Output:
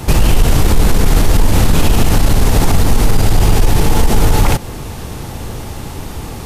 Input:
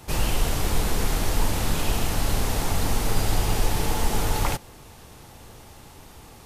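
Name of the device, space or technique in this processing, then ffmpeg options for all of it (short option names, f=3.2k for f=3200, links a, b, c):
mastering chain: -af "equalizer=f=720:t=o:w=2:g=-3.5,acompressor=threshold=-28dB:ratio=1.5,asoftclip=type=tanh:threshold=-17dB,tiltshelf=f=1.2k:g=3.5,alimiter=level_in=20dB:limit=-1dB:release=50:level=0:latency=1,volume=-1dB"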